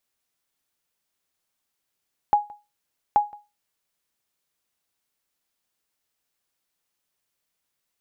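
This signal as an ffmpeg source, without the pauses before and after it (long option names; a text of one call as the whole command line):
ffmpeg -f lavfi -i "aevalsrc='0.316*(sin(2*PI*830*mod(t,0.83))*exp(-6.91*mod(t,0.83)/0.25)+0.0562*sin(2*PI*830*max(mod(t,0.83)-0.17,0))*exp(-6.91*max(mod(t,0.83)-0.17,0)/0.25))':duration=1.66:sample_rate=44100" out.wav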